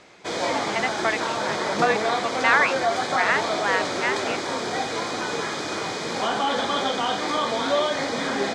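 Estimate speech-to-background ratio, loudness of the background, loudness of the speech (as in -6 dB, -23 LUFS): -1.0 dB, -25.0 LUFS, -26.0 LUFS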